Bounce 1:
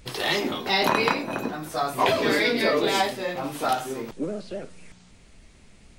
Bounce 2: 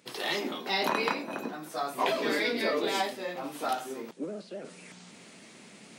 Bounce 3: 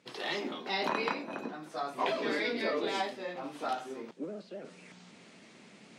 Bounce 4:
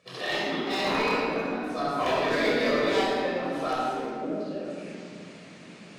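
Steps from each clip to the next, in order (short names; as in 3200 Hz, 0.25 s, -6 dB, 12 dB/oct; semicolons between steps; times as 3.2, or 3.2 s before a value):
HPF 180 Hz 24 dB/oct; reverse; upward compressor, threshold -32 dBFS; reverse; gain -6.5 dB
air absorption 71 m; gain -3 dB
hard clip -28 dBFS, distortion -14 dB; shoebox room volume 3400 m³, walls mixed, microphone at 5.9 m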